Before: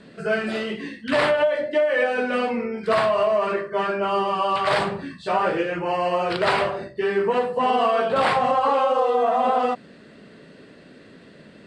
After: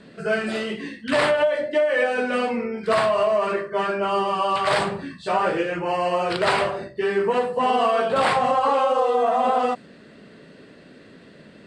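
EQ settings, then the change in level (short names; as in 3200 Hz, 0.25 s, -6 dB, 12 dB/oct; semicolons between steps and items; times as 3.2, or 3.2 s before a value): dynamic EQ 8400 Hz, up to +6 dB, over -51 dBFS, Q 1.1; 0.0 dB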